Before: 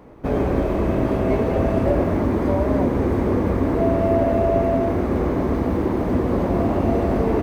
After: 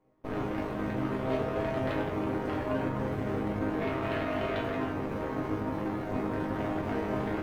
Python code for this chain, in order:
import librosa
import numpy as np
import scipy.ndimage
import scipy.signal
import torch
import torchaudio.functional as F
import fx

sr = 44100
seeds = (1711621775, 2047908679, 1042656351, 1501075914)

y = fx.cheby_harmonics(x, sr, harmonics=(5, 7, 8), levels_db=(-6, -7, -14), full_scale_db=-7.0)
y = fx.resonator_bank(y, sr, root=44, chord='major', decay_s=0.43)
y = F.gain(torch.from_numpy(y), -1.0).numpy()